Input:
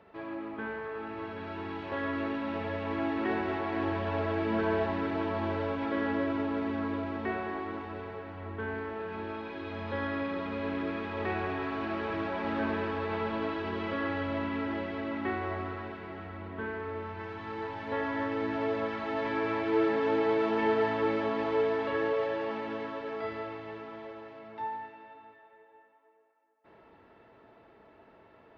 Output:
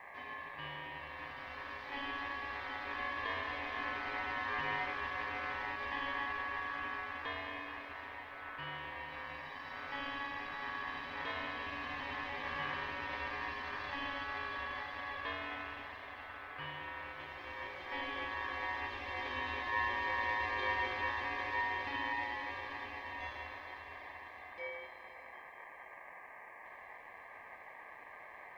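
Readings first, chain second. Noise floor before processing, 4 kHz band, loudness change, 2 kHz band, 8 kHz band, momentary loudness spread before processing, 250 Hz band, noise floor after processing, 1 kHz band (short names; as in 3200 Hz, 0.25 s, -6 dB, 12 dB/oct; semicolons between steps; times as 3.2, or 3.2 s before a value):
-59 dBFS, +1.0 dB, -6.5 dB, +0.5 dB, n/a, 12 LU, -19.0 dB, -53 dBFS, -4.0 dB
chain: band noise 170–810 Hz -44 dBFS; ring modulator 1400 Hz; requantised 12-bit, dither none; gain -5.5 dB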